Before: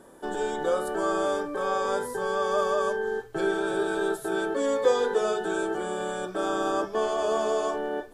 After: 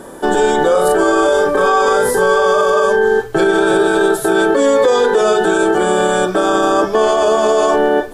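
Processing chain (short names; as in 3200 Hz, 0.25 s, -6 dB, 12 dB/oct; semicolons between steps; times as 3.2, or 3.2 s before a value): 0.71–2.86 doubler 39 ms -2 dB; maximiser +21.5 dB; gain -3.5 dB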